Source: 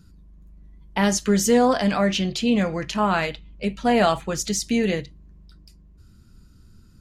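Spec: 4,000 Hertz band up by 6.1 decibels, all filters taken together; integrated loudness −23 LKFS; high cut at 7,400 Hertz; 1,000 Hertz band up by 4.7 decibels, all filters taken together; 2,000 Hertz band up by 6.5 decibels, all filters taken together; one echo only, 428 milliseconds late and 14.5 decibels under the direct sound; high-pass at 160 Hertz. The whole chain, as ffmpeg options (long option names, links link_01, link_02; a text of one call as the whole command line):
ffmpeg -i in.wav -af "highpass=160,lowpass=7400,equalizer=frequency=1000:width_type=o:gain=5,equalizer=frequency=2000:width_type=o:gain=5,equalizer=frequency=4000:width_type=o:gain=6.5,aecho=1:1:428:0.188,volume=-3.5dB" out.wav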